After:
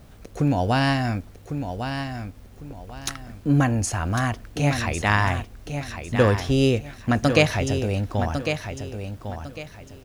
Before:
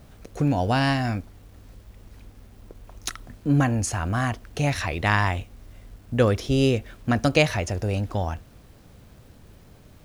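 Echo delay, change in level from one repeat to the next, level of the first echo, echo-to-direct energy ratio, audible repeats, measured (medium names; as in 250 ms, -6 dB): 1102 ms, -11.0 dB, -8.0 dB, -7.5 dB, 3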